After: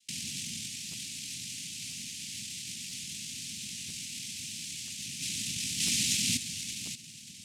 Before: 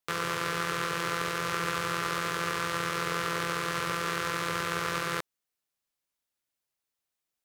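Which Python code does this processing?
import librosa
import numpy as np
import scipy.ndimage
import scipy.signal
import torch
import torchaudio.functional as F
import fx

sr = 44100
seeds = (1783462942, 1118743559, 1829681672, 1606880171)

y = fx.bass_treble(x, sr, bass_db=7, treble_db=9)
y = fx.echo_feedback(y, sr, ms=580, feedback_pct=33, wet_db=-4)
y = fx.noise_vocoder(y, sr, seeds[0], bands=2)
y = scipy.signal.sosfilt(scipy.signal.ellip(3, 1.0, 60, [230.0, 2500.0], 'bandstop', fs=sr, output='sos'), y)
y = fx.high_shelf(y, sr, hz=5900.0, db=4.5)
y = fx.over_compress(y, sr, threshold_db=-43.0, ratio=-1.0)
y = fx.buffer_crackle(y, sr, first_s=0.91, period_s=0.99, block=512, kind='repeat')
y = y * 10.0 ** (5.0 / 20.0)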